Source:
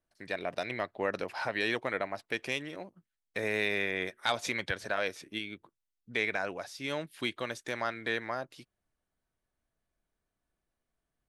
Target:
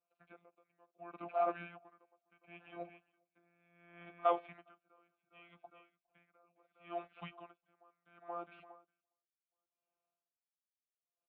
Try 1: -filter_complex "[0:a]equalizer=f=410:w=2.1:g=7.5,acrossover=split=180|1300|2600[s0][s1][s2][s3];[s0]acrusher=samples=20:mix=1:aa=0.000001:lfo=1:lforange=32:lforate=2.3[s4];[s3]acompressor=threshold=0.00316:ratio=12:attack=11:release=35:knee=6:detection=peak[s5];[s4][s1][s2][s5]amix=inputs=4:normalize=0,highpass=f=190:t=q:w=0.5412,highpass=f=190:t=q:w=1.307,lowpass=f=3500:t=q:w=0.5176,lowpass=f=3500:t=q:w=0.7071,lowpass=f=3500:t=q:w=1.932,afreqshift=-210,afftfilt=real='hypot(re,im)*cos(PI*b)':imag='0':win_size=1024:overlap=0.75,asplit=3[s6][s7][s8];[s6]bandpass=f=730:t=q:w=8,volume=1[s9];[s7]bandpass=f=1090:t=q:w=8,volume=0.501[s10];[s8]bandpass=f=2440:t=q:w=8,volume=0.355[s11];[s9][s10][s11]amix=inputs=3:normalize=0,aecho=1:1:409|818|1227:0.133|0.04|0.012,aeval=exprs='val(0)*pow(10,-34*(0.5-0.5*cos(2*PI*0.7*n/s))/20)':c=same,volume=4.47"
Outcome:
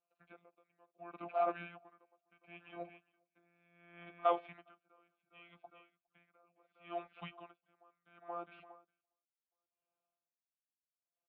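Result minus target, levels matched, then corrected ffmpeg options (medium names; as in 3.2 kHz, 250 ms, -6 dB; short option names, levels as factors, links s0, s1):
compression: peak gain reduction -6.5 dB; decimation with a swept rate: distortion -7 dB
-filter_complex "[0:a]equalizer=f=410:w=2.1:g=7.5,acrossover=split=180|1300|2600[s0][s1][s2][s3];[s0]acrusher=samples=42:mix=1:aa=0.000001:lfo=1:lforange=67.2:lforate=2.3[s4];[s3]acompressor=threshold=0.00141:ratio=12:attack=11:release=35:knee=6:detection=peak[s5];[s4][s1][s2][s5]amix=inputs=4:normalize=0,highpass=f=190:t=q:w=0.5412,highpass=f=190:t=q:w=1.307,lowpass=f=3500:t=q:w=0.5176,lowpass=f=3500:t=q:w=0.7071,lowpass=f=3500:t=q:w=1.932,afreqshift=-210,afftfilt=real='hypot(re,im)*cos(PI*b)':imag='0':win_size=1024:overlap=0.75,asplit=3[s6][s7][s8];[s6]bandpass=f=730:t=q:w=8,volume=1[s9];[s7]bandpass=f=1090:t=q:w=8,volume=0.501[s10];[s8]bandpass=f=2440:t=q:w=8,volume=0.355[s11];[s9][s10][s11]amix=inputs=3:normalize=0,aecho=1:1:409|818|1227:0.133|0.04|0.012,aeval=exprs='val(0)*pow(10,-34*(0.5-0.5*cos(2*PI*0.7*n/s))/20)':c=same,volume=4.47"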